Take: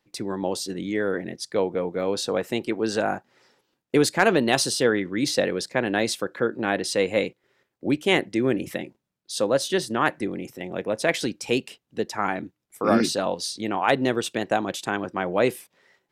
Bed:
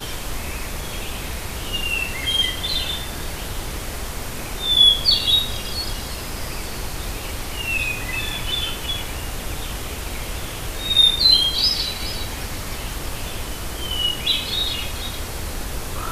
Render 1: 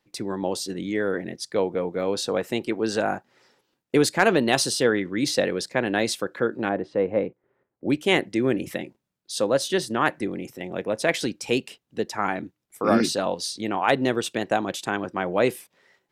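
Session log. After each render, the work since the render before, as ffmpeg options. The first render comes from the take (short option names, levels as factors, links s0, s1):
-filter_complex "[0:a]asplit=3[s0][s1][s2];[s0]afade=t=out:st=6.68:d=0.02[s3];[s1]lowpass=1100,afade=t=in:st=6.68:d=0.02,afade=t=out:st=7.87:d=0.02[s4];[s2]afade=t=in:st=7.87:d=0.02[s5];[s3][s4][s5]amix=inputs=3:normalize=0"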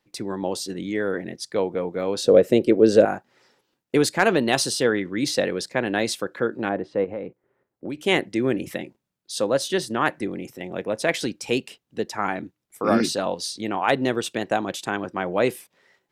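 -filter_complex "[0:a]asettb=1/sr,asplit=3[s0][s1][s2];[s0]atrim=end=2.244[s3];[s1]atrim=start=2.24:end=3.05,asetpts=PTS-STARTPTS,afade=t=in:d=0.004:c=qsin,afade=t=out:st=0.806:d=0.004:c=qsin,lowshelf=f=690:t=q:w=3:g=7[s4];[s2]atrim=start=3.046[s5];[s3][s4]acrossfade=d=0.004:c1=hsin:c2=qsin[s6];[s6][s5]acrossfade=d=0.004:c1=qsin:c2=hsin,asettb=1/sr,asplit=3[s7][s8][s9];[s7]atrim=end=7.044[s10];[s8]atrim=start=7.04:end=8.02,asetpts=PTS-STARTPTS,afade=t=in:d=0.004:c=qsin,afade=t=out:st=0.976:d=0.004:c=qsin,acompressor=threshold=0.0447:ratio=5:attack=3.2:release=140:knee=1:detection=peak[s11];[s9]atrim=start=8.016[s12];[s10][s11]acrossfade=d=0.004:c1=hsin:c2=qsin[s13];[s13][s12]acrossfade=d=0.004:c1=qsin:c2=hsin"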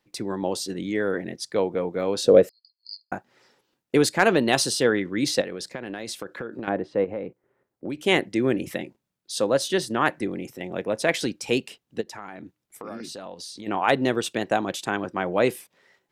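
-filter_complex "[0:a]asettb=1/sr,asplit=3[s0][s1][s2];[s0]atrim=end=2.494[s3];[s1]atrim=start=2.49:end=3.12,asetpts=PTS-STARTPTS,afade=t=in:d=0.004:c=qsin,afade=t=out:st=0.626:d=0.004:c=qsin,asuperpass=centerf=4600:order=20:qfactor=5.7[s4];[s2]atrim=start=3.116[s5];[s3][s4]acrossfade=d=0.004:c1=hsin:c2=qsin[s6];[s6][s5]acrossfade=d=0.004:c1=qsin:c2=hsin,asettb=1/sr,asplit=3[s7][s8][s9];[s7]atrim=end=5.414[s10];[s8]atrim=start=5.41:end=6.68,asetpts=PTS-STARTPTS,afade=t=in:d=0.004:c=qsin,afade=t=out:st=1.266:d=0.004:c=qsin,acompressor=threshold=0.0398:ratio=16:attack=3.2:release=140:knee=1:detection=peak[s11];[s9]atrim=start=6.676[s12];[s10][s11]acrossfade=d=0.004:c1=hsin:c2=qsin[s13];[s13][s12]acrossfade=d=0.004:c1=qsin:c2=hsin,asplit=3[s14][s15][s16];[s14]afade=t=out:st=12:d=0.02[s17];[s15]acompressor=threshold=0.0158:ratio=4:attack=3.2:release=140:knee=1:detection=peak,afade=t=in:st=12:d=0.02,afade=t=out:st=13.66:d=0.02[s18];[s16]afade=t=in:st=13.66:d=0.02[s19];[s17][s18][s19]amix=inputs=3:normalize=0"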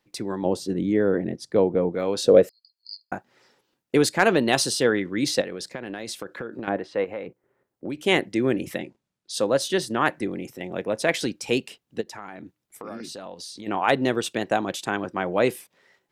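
-filter_complex "[0:a]asettb=1/sr,asplit=3[s0][s1][s2];[s0]atrim=end=0.454[s3];[s1]atrim=start=0.45:end=1.95,asetpts=PTS-STARTPTS,afade=t=in:d=0.004:c=qsin,afade=t=out:st=1.496:d=0.004:c=qsin,tiltshelf=f=910:g=7[s4];[s2]atrim=start=1.946[s5];[s3][s4]acrossfade=d=0.004:c1=hsin:c2=qsin[s6];[s6][s5]acrossfade=d=0.004:c1=qsin:c2=hsin,asplit=3[s7][s8][s9];[s7]afade=t=out:st=6.76:d=0.02[s10];[s8]tiltshelf=f=650:g=-7,afade=t=in:st=6.76:d=0.02,afade=t=out:st=7.26:d=0.02[s11];[s9]afade=t=in:st=7.26:d=0.02[s12];[s10][s11][s12]amix=inputs=3:normalize=0,asettb=1/sr,asplit=3[s13][s14][s15];[s13]atrim=end=8.794[s16];[s14]atrim=start=8.79:end=9.34,asetpts=PTS-STARTPTS,afade=t=in:d=0.004:c=qsin,afade=t=out:st=0.546:d=0.004:c=qsin,lowpass=8800[s17];[s15]atrim=start=9.336[s18];[s16][s17]acrossfade=d=0.004:c1=hsin:c2=qsin[s19];[s19][s18]acrossfade=d=0.004:c1=qsin:c2=hsin"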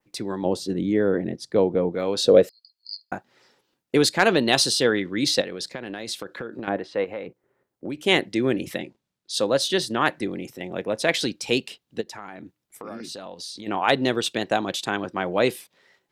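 -af "adynamicequalizer=threshold=0.00631:dfrequency=3900:dqfactor=1.6:tfrequency=3900:tqfactor=1.6:attack=5:release=100:ratio=0.375:range=3.5:mode=boostabove:tftype=bell"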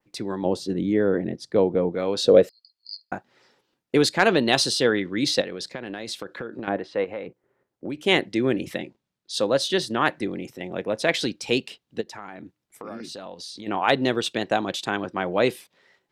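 -af "highshelf=f=7600:g=-7"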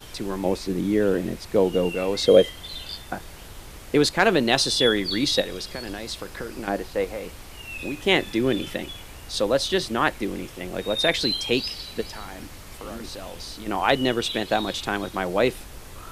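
-filter_complex "[1:a]volume=0.224[s0];[0:a][s0]amix=inputs=2:normalize=0"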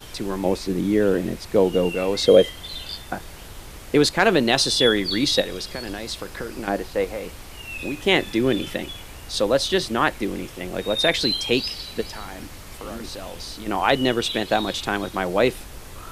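-af "volume=1.26,alimiter=limit=0.708:level=0:latency=1"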